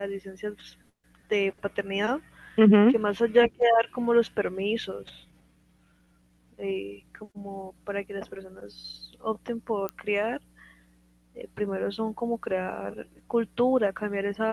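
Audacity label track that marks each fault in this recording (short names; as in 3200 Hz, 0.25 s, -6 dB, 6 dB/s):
9.890000	9.890000	pop -17 dBFS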